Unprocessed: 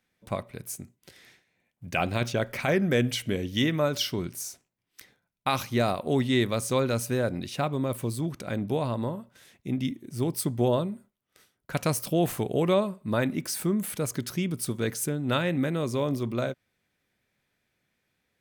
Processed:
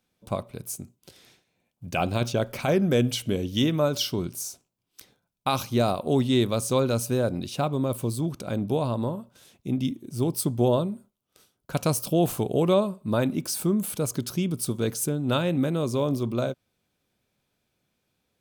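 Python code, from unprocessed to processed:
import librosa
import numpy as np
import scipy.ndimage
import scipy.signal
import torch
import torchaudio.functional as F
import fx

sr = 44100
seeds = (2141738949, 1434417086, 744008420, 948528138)

y = fx.peak_eq(x, sr, hz=1900.0, db=-12.0, octaves=0.56)
y = y * librosa.db_to_amplitude(2.5)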